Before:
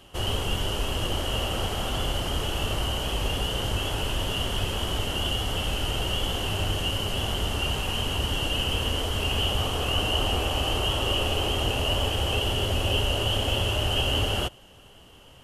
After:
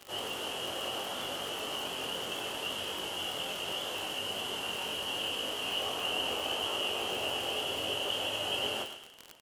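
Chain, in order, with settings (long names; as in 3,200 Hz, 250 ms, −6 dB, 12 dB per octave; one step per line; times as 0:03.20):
mains-hum notches 50/100/150/200/250/300/350/400 Hz
time stretch by phase vocoder 0.61×
high-pass filter 280 Hz 12 dB per octave
repeating echo 126 ms, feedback 33%, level −13.5 dB
chorus effect 0.73 Hz, delay 19.5 ms, depth 3.5 ms
on a send: delay with a high-pass on its return 99 ms, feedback 50%, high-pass 1,500 Hz, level −9 dB
on the sum: surface crackle 50 per second −32 dBFS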